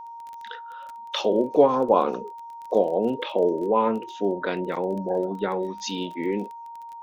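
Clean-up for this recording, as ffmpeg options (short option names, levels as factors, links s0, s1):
-af "adeclick=t=4,bandreject=f=930:w=30"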